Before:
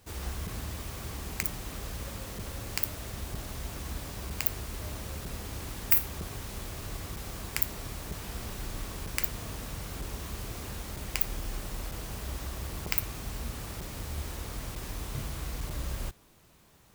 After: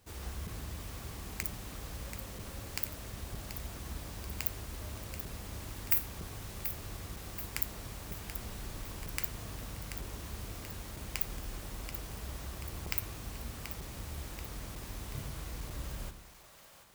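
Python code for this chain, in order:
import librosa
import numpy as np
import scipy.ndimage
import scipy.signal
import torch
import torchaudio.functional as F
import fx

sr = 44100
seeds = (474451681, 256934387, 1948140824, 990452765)

y = fx.echo_split(x, sr, split_hz=530.0, low_ms=99, high_ms=733, feedback_pct=52, wet_db=-9.5)
y = F.gain(torch.from_numpy(y), -5.5).numpy()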